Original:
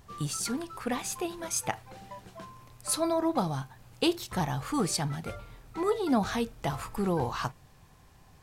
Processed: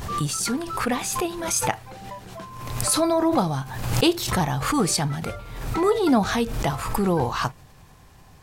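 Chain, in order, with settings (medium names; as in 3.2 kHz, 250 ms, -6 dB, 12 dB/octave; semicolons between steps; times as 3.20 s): swell ahead of each attack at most 51 dB/s; trim +6.5 dB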